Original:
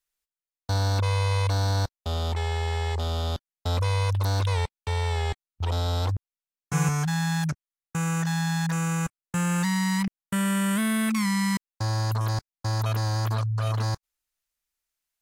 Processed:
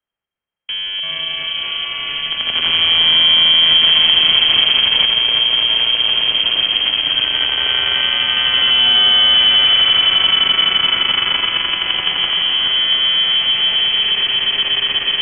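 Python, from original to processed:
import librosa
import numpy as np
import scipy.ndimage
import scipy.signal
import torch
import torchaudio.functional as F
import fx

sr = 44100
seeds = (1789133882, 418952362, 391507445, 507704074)

p1 = x + fx.echo_swell(x, sr, ms=85, loudest=8, wet_db=-4.0, dry=0)
p2 = 10.0 ** (-5.5 / 20.0) * np.tanh(p1 / 10.0 ** (-5.5 / 20.0))
p3 = fx.quant_companded(p2, sr, bits=2)
p4 = p2 + (p3 * 10.0 ** (-3.5 / 20.0))
p5 = fx.echo_pitch(p4, sr, ms=107, semitones=-6, count=2, db_per_echo=-6.0)
p6 = fx.freq_invert(p5, sr, carrier_hz=3200)
p7 = fx.band_squash(p6, sr, depth_pct=40)
y = p7 * 10.0 ** (-9.0 / 20.0)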